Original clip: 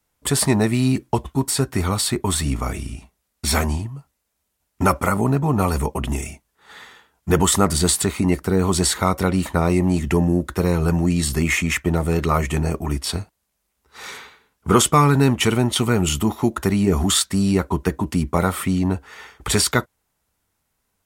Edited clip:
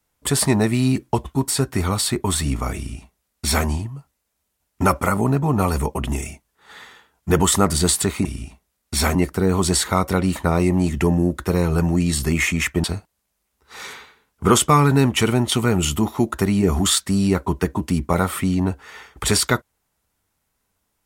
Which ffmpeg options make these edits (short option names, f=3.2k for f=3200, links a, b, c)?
-filter_complex "[0:a]asplit=4[a][b][c][d];[a]atrim=end=8.252[e];[b]atrim=start=2.758:end=3.662[f];[c]atrim=start=8.248:end=11.942[g];[d]atrim=start=13.078[h];[e][f]acrossfade=d=0.004:c1=hsin:c2=hsin[i];[i][g]acrossfade=d=0.004:c1=hsin:c2=hsin[j];[j][h]acrossfade=d=0.004:c1=hsin:c2=hsin"